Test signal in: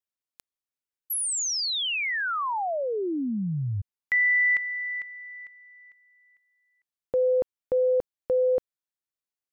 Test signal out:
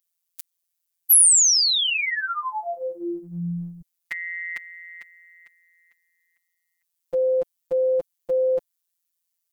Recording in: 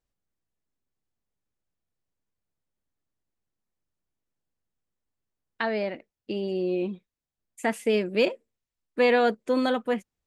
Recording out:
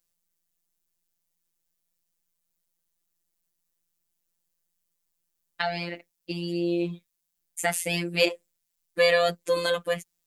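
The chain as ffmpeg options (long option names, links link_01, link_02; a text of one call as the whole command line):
ffmpeg -i in.wav -af "crystalizer=i=4.5:c=0,afftfilt=real='hypot(re,im)*cos(PI*b)':imag='0':win_size=1024:overlap=0.75,volume=1.5dB" out.wav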